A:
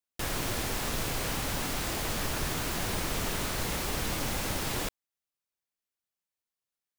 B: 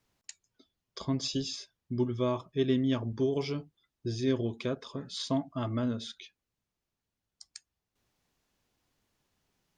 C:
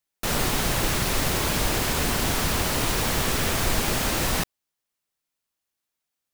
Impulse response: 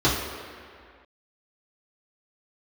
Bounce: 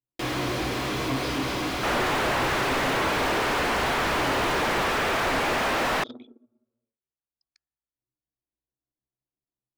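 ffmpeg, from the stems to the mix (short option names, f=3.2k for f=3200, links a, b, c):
-filter_complex "[0:a]equalizer=f=930:w=0.4:g=-11,volume=-3.5dB,asplit=2[a][b];[b]volume=-17dB[c];[1:a]volume=-12.5dB,asplit=2[d][e];[e]volume=-20.5dB[f];[2:a]adelay=1600,volume=-2.5dB[g];[3:a]atrim=start_sample=2205[h];[c][f]amix=inputs=2:normalize=0[i];[i][h]afir=irnorm=-1:irlink=0[j];[a][d][g][j]amix=inputs=4:normalize=0,anlmdn=0.0158,bass=f=250:g=-6,treble=f=4k:g=-9,asplit=2[k][l];[l]highpass=f=720:p=1,volume=30dB,asoftclip=type=tanh:threshold=-15.5dB[m];[k][m]amix=inputs=2:normalize=0,lowpass=f=1.6k:p=1,volume=-6dB"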